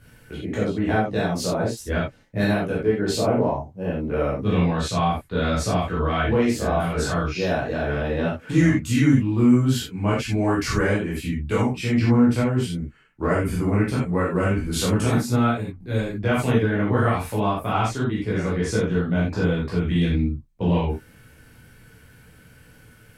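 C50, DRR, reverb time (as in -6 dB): 2.5 dB, -8.0 dB, not exponential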